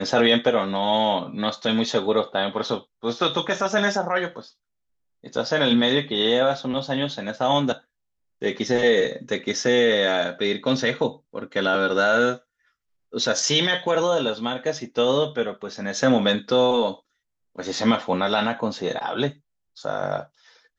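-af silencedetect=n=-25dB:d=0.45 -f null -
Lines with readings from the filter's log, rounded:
silence_start: 4.39
silence_end: 5.36 | silence_duration: 0.97
silence_start: 7.73
silence_end: 8.42 | silence_duration: 0.70
silence_start: 12.34
silence_end: 13.15 | silence_duration: 0.81
silence_start: 16.92
silence_end: 17.59 | silence_duration: 0.67
silence_start: 19.29
silence_end: 19.85 | silence_duration: 0.56
silence_start: 20.20
silence_end: 20.79 | silence_duration: 0.59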